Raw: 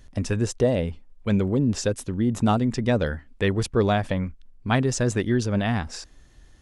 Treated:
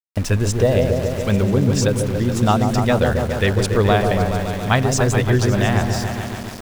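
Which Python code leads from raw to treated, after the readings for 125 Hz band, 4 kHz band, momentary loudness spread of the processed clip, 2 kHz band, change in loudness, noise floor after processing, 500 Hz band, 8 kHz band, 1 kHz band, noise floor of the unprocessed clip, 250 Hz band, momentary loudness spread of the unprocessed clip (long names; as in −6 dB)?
+7.5 dB, +7.5 dB, 5 LU, +7.5 dB, +6.0 dB, −30 dBFS, +6.5 dB, +7.0 dB, +8.0 dB, −52 dBFS, +4.0 dB, 8 LU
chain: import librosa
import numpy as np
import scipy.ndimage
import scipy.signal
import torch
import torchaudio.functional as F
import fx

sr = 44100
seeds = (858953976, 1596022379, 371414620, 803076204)

y = fx.echo_opening(x, sr, ms=141, hz=750, octaves=1, feedback_pct=70, wet_db=-3)
y = fx.dynamic_eq(y, sr, hz=270.0, q=1.1, threshold_db=-34.0, ratio=4.0, max_db=-7)
y = np.where(np.abs(y) >= 10.0 ** (-35.5 / 20.0), y, 0.0)
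y = y * librosa.db_to_amplitude(6.5)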